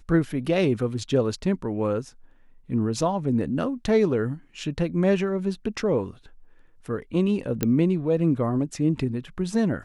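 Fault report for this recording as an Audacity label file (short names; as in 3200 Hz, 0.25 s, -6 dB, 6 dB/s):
7.630000	7.630000	pop -8 dBFS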